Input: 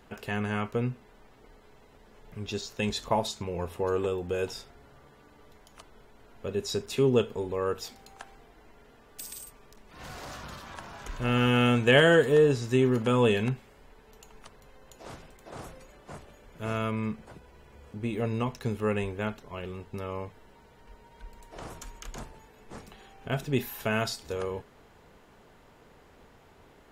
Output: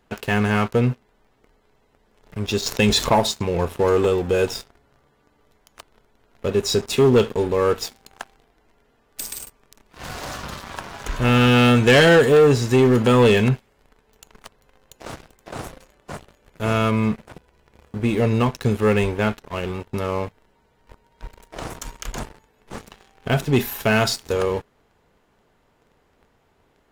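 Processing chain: sample leveller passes 3; 2.66–3.15 fast leveller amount 50%

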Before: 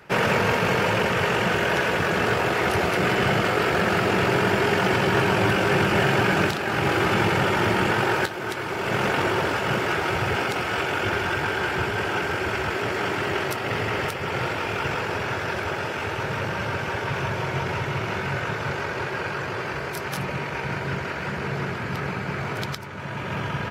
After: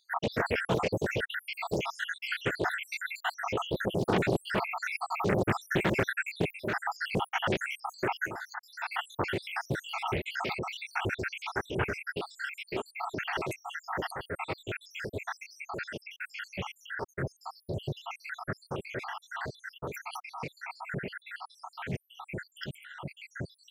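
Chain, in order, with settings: random spectral dropouts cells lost 83%; Doppler distortion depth 0.74 ms; gain -3 dB

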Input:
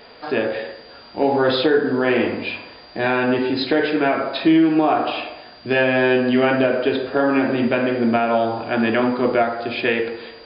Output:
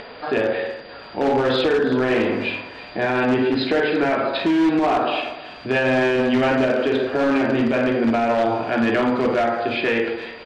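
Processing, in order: notches 60/120/180/240/300/360 Hz; doubler 47 ms -9.5 dB; on a send at -22 dB: reverb RT60 1.1 s, pre-delay 94 ms; on the sum: upward compressor, threshold -34 dBFS; in parallel at -10 dB: wrapped overs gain 11.5 dB; on the sum: LPF 3600 Hz 12 dB/oct; thin delay 0.333 s, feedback 51%, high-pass 1900 Hz, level -15 dB; limiter -12 dBFS, peak gain reduction 7 dB

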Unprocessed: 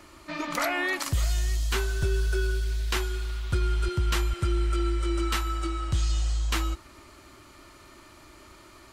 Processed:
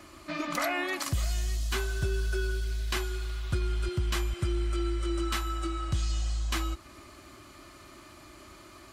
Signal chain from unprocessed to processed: in parallel at -1 dB: compressor, threshold -33 dBFS, peak gain reduction 11.5 dB; on the sum: notch comb 460 Hz; gain -4 dB

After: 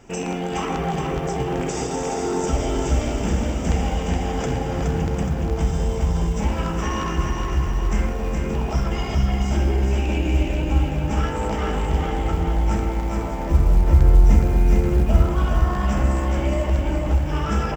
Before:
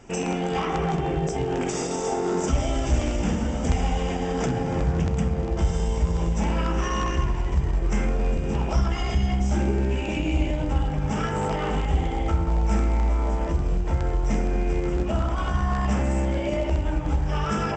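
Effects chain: 13.5–15.26 low shelf 180 Hz +9 dB; companded quantiser 8-bit; feedback echo 0.419 s, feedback 51%, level -4 dB

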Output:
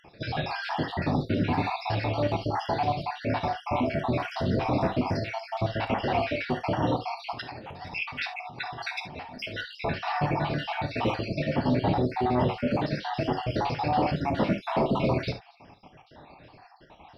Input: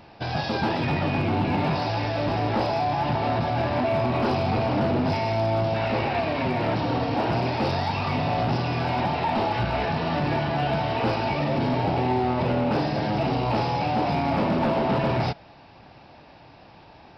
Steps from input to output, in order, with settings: random spectral dropouts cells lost 60%; 7.32–9.61 negative-ratio compressor -39 dBFS, ratio -1; non-linear reverb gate 90 ms flat, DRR 7 dB

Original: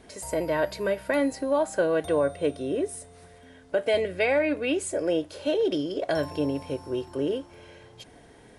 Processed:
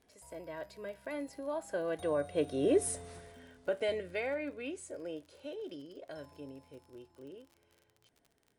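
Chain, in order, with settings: Doppler pass-by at 2.94, 9 m/s, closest 1.9 m; crackle 50/s -53 dBFS; gain +3.5 dB

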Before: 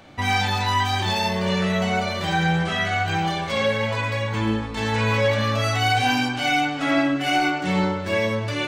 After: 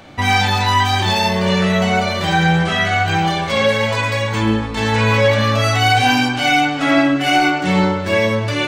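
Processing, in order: 3.68–4.43 tone controls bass -2 dB, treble +5 dB; gain +6.5 dB

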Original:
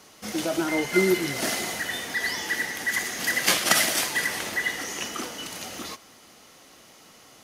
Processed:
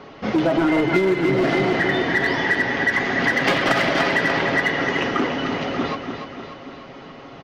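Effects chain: Gaussian blur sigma 2.6 samples; tilt shelf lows +3.5 dB, about 850 Hz; notches 50/100/150/200/250/300 Hz; feedback echo 0.293 s, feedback 56%, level -8 dB; in parallel at -5 dB: wavefolder -24 dBFS; on the sum: comb 7.3 ms, depth 43%; compressor 10:1, threshold -24 dBFS, peak gain reduction 10 dB; gain +9 dB

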